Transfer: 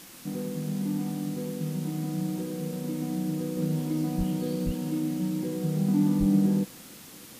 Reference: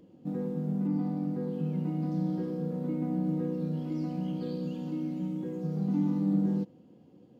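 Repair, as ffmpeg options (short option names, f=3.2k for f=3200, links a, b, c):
-filter_complex "[0:a]asplit=3[a][b][c];[a]afade=t=out:st=4.17:d=0.02[d];[b]highpass=f=140:w=0.5412,highpass=f=140:w=1.3066,afade=t=in:st=4.17:d=0.02,afade=t=out:st=4.29:d=0.02[e];[c]afade=t=in:st=4.29:d=0.02[f];[d][e][f]amix=inputs=3:normalize=0,asplit=3[g][h][i];[g]afade=t=out:st=4.65:d=0.02[j];[h]highpass=f=140:w=0.5412,highpass=f=140:w=1.3066,afade=t=in:st=4.65:d=0.02,afade=t=out:st=4.77:d=0.02[k];[i]afade=t=in:st=4.77:d=0.02[l];[j][k][l]amix=inputs=3:normalize=0,asplit=3[m][n][o];[m]afade=t=out:st=6.19:d=0.02[p];[n]highpass=f=140:w=0.5412,highpass=f=140:w=1.3066,afade=t=in:st=6.19:d=0.02,afade=t=out:st=6.31:d=0.02[q];[o]afade=t=in:st=6.31:d=0.02[r];[p][q][r]amix=inputs=3:normalize=0,afwtdn=0.0045,asetnsamples=n=441:p=0,asendcmd='3.57 volume volume -4.5dB',volume=0dB"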